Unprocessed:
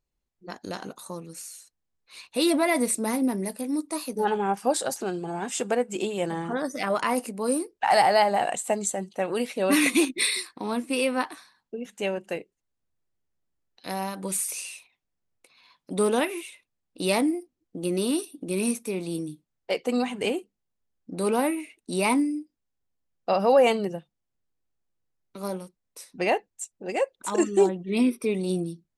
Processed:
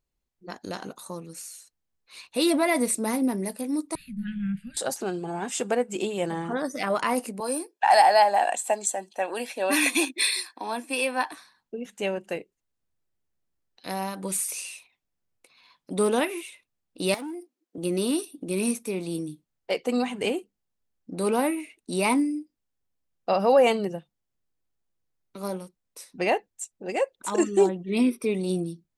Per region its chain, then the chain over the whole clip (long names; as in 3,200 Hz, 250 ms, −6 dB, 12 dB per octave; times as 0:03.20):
0:03.95–0:04.77: inverse Chebyshev band-stop filter 300–980 Hz + spectral tilt −4.5 dB per octave + phaser with its sweep stopped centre 2,500 Hz, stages 4
0:07.40–0:11.32: high-pass filter 300 Hz 24 dB per octave + comb filter 1.2 ms, depth 49%
0:17.14–0:17.78: gain into a clipping stage and back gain 25 dB + high-pass filter 240 Hz 24 dB per octave + downward compressor, threshold −33 dBFS
whole clip: no processing